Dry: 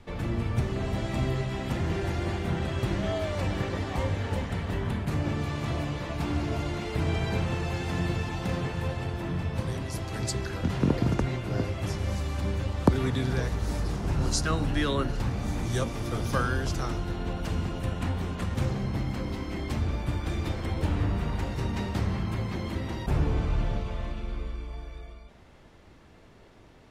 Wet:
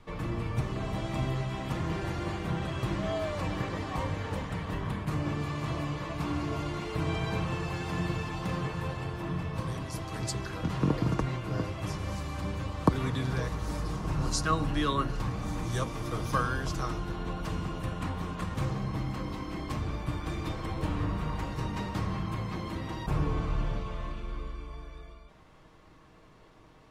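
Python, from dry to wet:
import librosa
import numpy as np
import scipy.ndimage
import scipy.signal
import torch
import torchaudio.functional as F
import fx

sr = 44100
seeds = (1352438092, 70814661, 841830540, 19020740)

y = fx.peak_eq(x, sr, hz=1100.0, db=9.0, octaves=0.28)
y = y + 0.36 * np.pad(y, (int(6.4 * sr / 1000.0), 0))[:len(y)]
y = F.gain(torch.from_numpy(y), -3.5).numpy()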